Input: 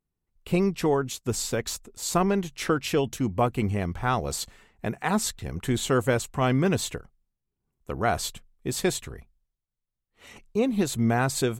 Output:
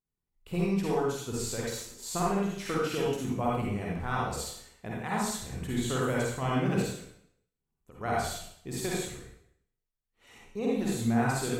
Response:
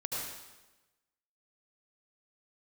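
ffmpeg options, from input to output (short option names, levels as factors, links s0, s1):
-filter_complex "[0:a]asettb=1/sr,asplit=3[s0][s1][s2];[s0]atrim=end=6.824[s3];[s1]atrim=start=6.82:end=8.01,asetpts=PTS-STARTPTS,afade=t=in:d=0.004:c=qsin,afade=t=out:st=1.186:d=0.004:c=qsin,acompressor=threshold=0.00631:ratio=3[s4];[s2]atrim=start=8.006[s5];[s3][s4]acrossfade=d=0.004:c1=hsin:c2=qsin[s6];[s6][s5]acrossfade=d=0.004:c1=qsin:c2=hsin[s7];[1:a]atrim=start_sample=2205,asetrate=70560,aresample=44100[s8];[s7][s8]afir=irnorm=-1:irlink=0,volume=0.596"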